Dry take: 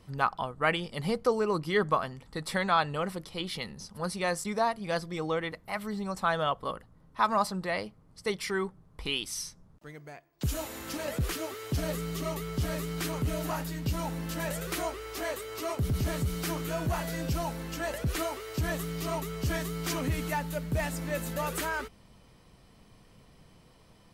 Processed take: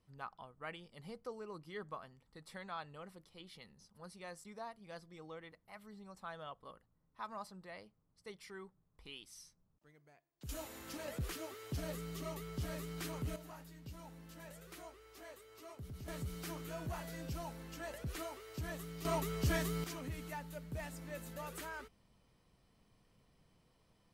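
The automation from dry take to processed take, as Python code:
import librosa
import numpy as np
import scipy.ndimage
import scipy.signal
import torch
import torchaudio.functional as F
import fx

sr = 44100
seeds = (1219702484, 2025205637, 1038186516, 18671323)

y = fx.gain(x, sr, db=fx.steps((0.0, -19.5), (10.49, -10.0), (13.36, -19.5), (16.08, -12.0), (19.05, -3.0), (19.84, -13.5)))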